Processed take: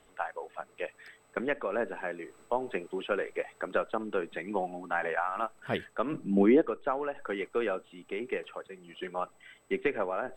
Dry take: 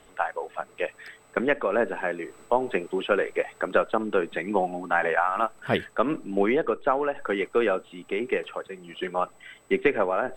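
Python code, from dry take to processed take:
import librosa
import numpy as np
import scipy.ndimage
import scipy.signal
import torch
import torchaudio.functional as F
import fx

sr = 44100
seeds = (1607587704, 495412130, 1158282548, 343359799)

y = fx.peak_eq(x, sr, hz=fx.line((6.12, 120.0), (6.6, 350.0)), db=15.0, octaves=1.0, at=(6.12, 6.6), fade=0.02)
y = y * librosa.db_to_amplitude(-7.5)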